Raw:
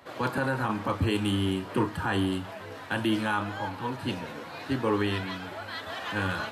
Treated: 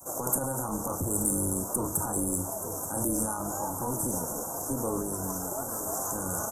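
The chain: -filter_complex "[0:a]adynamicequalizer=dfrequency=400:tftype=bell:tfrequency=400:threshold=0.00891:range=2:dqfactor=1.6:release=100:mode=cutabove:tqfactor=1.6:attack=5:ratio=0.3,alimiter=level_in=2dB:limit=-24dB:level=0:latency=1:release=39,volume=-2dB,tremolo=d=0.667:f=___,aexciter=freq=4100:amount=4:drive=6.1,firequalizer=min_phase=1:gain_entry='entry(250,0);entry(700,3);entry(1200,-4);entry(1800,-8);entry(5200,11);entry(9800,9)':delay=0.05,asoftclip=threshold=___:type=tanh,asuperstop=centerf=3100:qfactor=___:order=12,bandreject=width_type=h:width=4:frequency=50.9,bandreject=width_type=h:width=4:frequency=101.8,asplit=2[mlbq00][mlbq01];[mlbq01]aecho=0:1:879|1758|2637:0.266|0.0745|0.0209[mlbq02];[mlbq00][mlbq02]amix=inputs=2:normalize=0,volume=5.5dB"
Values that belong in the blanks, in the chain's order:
250, -17.5dB, 0.62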